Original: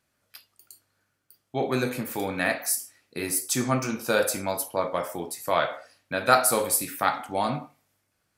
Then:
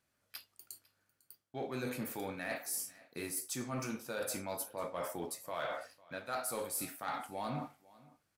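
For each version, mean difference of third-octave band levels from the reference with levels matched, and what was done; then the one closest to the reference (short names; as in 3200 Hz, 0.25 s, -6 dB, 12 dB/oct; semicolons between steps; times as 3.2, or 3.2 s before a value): 5.0 dB: reverse; compressor 6:1, threshold -36 dBFS, peak gain reduction 21.5 dB; reverse; sample leveller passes 1; echo 0.5 s -22.5 dB; gain -4 dB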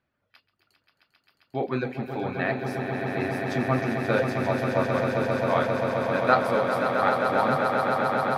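11.0 dB: reverb removal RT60 0.71 s; air absorption 320 m; swelling echo 0.133 s, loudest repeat 8, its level -7.5 dB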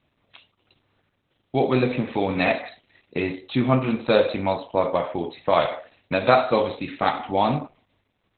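8.0 dB: bell 1500 Hz -9.5 dB 0.47 oct; in parallel at -2 dB: compressor 4:1, threshold -35 dBFS, peak gain reduction 16.5 dB; on the sum: gain +5 dB; Opus 8 kbps 48000 Hz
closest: first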